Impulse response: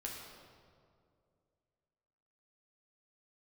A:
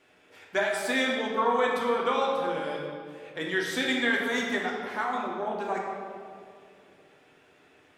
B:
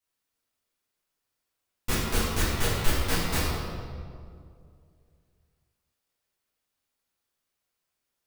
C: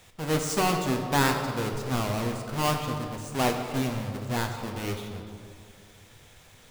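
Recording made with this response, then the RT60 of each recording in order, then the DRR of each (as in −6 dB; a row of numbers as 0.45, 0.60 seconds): A; 2.3, 2.3, 2.3 seconds; −2.5, −9.5, 3.0 decibels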